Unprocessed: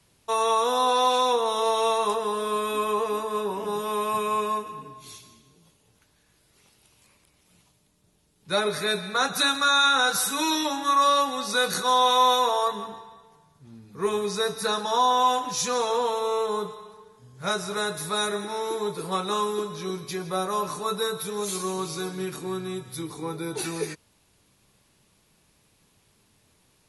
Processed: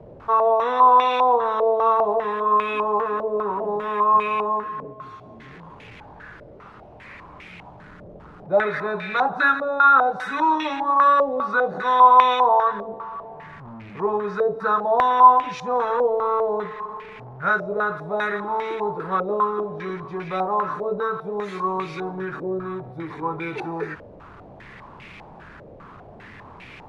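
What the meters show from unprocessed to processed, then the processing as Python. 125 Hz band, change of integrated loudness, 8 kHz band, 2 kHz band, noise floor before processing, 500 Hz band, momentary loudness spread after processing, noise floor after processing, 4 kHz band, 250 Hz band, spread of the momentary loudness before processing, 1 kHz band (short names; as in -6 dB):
+2.0 dB, +4.5 dB, under -20 dB, +4.5 dB, -65 dBFS, +4.0 dB, 18 LU, -44 dBFS, -11.5 dB, +1.0 dB, 13 LU, +6.5 dB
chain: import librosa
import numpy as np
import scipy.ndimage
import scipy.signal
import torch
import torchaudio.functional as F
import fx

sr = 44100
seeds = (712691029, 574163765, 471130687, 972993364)

y = x + 0.5 * 10.0 ** (-36.5 / 20.0) * np.sign(x)
y = fx.filter_held_lowpass(y, sr, hz=5.0, low_hz=570.0, high_hz=2300.0)
y = y * 10.0 ** (-1.0 / 20.0)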